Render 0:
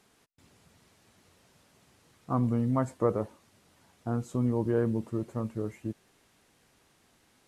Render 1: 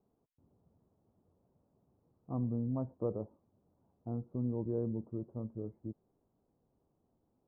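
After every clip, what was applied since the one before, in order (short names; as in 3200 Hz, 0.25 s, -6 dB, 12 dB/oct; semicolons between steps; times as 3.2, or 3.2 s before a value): Bessel low-pass 590 Hz, order 6; gain -7 dB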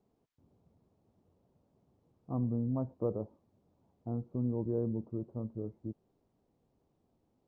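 decimation joined by straight lines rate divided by 3×; gain +2 dB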